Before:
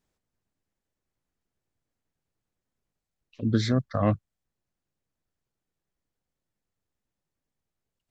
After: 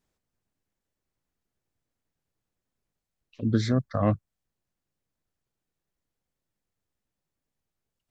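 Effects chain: dynamic bell 3.3 kHz, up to -4 dB, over -48 dBFS, Q 0.86

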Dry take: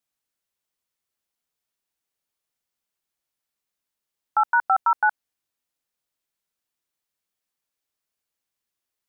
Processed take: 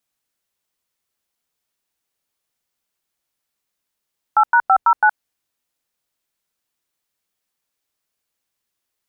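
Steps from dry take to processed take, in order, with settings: 4.45–5.04 s: tilt EQ -1.5 dB/octave; trim +5.5 dB

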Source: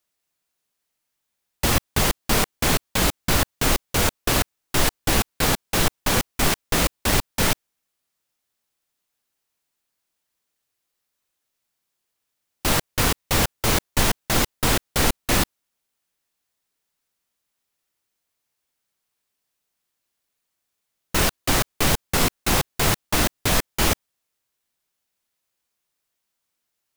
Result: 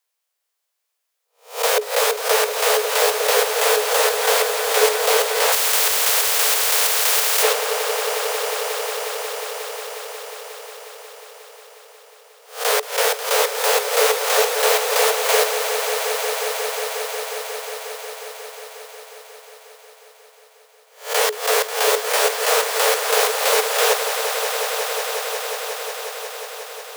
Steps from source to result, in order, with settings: reverse spectral sustain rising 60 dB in 0.35 s; frequency shift +420 Hz; on a send: echo with a slow build-up 180 ms, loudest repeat 5, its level -11 dB; 5.52–7.43 s: on the sum: spectrum-flattening compressor 4:1

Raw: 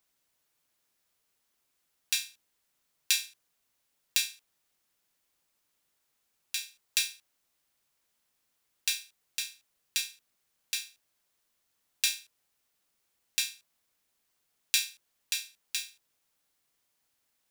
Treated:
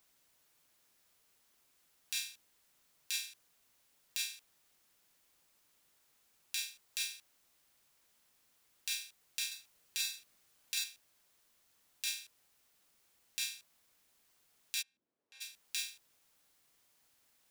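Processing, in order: compression 6:1, threshold -33 dBFS, peak gain reduction 11.5 dB; peak limiter -20.5 dBFS, peak gain reduction 12 dB; 9.47–10.84 s: doubling 44 ms -4 dB; 14.81–15.40 s: band-pass filter 170 Hz -> 540 Hz, Q 1.6; trim +5 dB

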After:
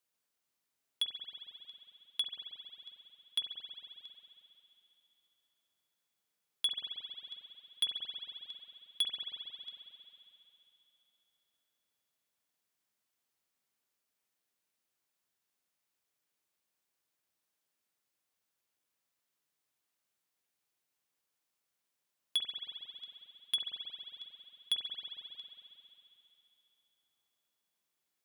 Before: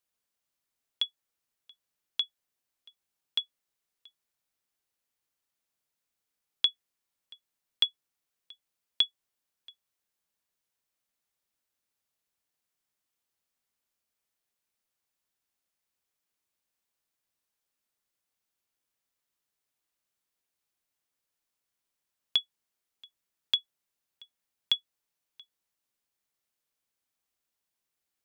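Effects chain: on a send at -7 dB: reverberation RT60 3.2 s, pre-delay 45 ms; on the sum: saturation -25 dBFS, distortion -7 dB; high-pass 95 Hz

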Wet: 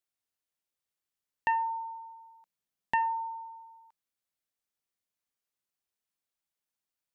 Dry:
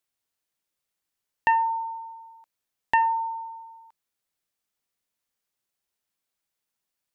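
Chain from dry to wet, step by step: 1.61–3.37 s: peaking EQ 180 Hz +8.5 dB 0.78 oct; trim -7 dB

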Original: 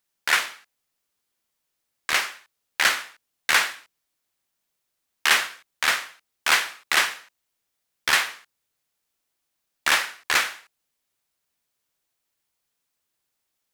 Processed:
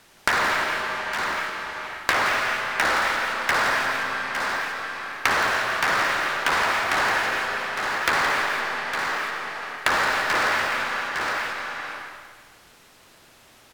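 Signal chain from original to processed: low-pass 2.1 kHz 6 dB/octave; low-pass that closes with the level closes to 1.3 kHz, closed at -23.5 dBFS; in parallel at -2 dB: compressor with a negative ratio -35 dBFS, ratio -1; on the sum: transient shaper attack -2 dB, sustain +7 dB; waveshaping leveller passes 3; saturation -19.5 dBFS, distortion -12 dB; multi-tap echo 169/858 ms -5.5/-19 dB; on a send at -6 dB: reverberation RT60 1.6 s, pre-delay 40 ms; on the sum: three bands compressed up and down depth 100%

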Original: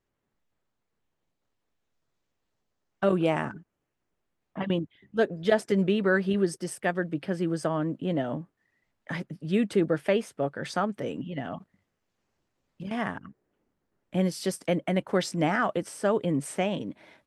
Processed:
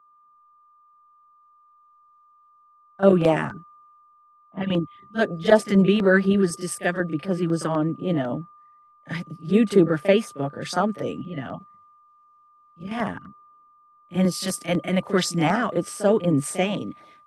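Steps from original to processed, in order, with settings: LFO notch saw down 4 Hz 280–3500 Hz; whistle 1.2 kHz -50 dBFS; reverse echo 36 ms -11 dB; three bands expanded up and down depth 40%; trim +5.5 dB

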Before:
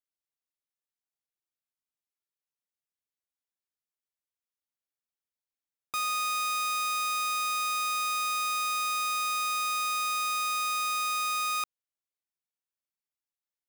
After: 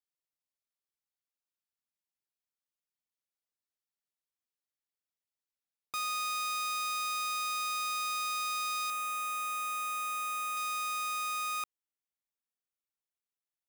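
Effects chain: peaking EQ 4.6 kHz +2 dB 0.57 oct, from 8.90 s -14 dB, from 10.57 s -4.5 dB; trim -4.5 dB

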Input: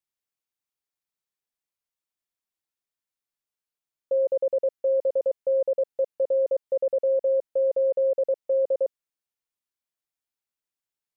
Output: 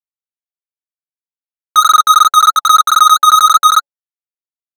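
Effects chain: gate -31 dBFS, range -22 dB; peaking EQ 570 Hz +14 dB 0.45 oct; hum notches 60/120/180/240/300/360 Hz; waveshaping leveller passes 5; flange 2 Hz, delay 8.2 ms, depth 4.1 ms, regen +20%; speed mistake 33 rpm record played at 78 rpm; trim +5 dB

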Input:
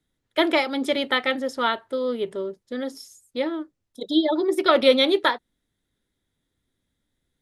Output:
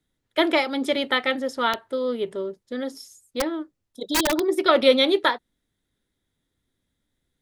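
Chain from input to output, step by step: 1.73–4.46 s: integer overflow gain 15.5 dB

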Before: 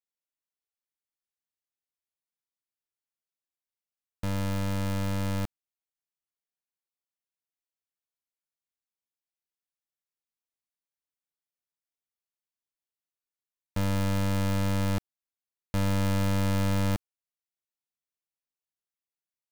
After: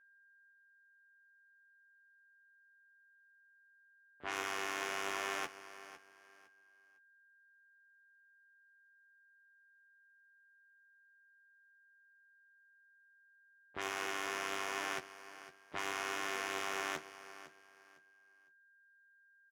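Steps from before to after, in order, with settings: comb filter that takes the minimum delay 2.4 ms; frequency weighting A; level-controlled noise filter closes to 310 Hz, open at -36 dBFS; peaking EQ 380 Hz +5.5 dB 0.27 oct; in parallel at -2 dB: compressor with a negative ratio -40 dBFS, ratio -0.5; on the sum: harmony voices -7 st -16 dB, -3 st -11 dB, +7 st -16 dB; flange 0.74 Hz, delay 6.3 ms, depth 7.8 ms, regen +58%; whistle 1.6 kHz -63 dBFS; doubling 13 ms -5 dB; on a send: feedback delay 506 ms, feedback 25%, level -15 dB; on the sum: loudspeaker Doppler distortion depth 0.12 ms; trim -3 dB

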